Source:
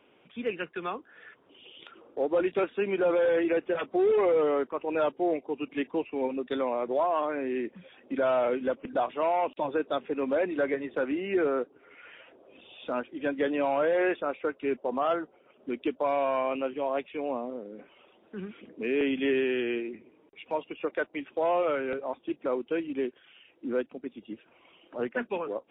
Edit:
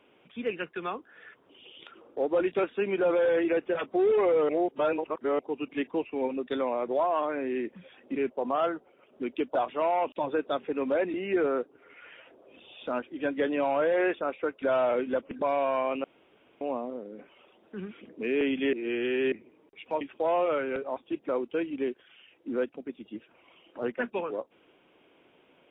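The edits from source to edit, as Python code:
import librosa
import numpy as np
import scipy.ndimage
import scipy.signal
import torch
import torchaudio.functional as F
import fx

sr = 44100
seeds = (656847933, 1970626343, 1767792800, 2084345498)

y = fx.edit(x, sr, fx.reverse_span(start_s=4.49, length_s=0.9),
    fx.swap(start_s=8.16, length_s=0.8, other_s=14.63, other_length_s=1.39),
    fx.cut(start_s=10.55, length_s=0.6),
    fx.room_tone_fill(start_s=16.64, length_s=0.57),
    fx.reverse_span(start_s=19.33, length_s=0.59),
    fx.cut(start_s=20.61, length_s=0.57), tone=tone)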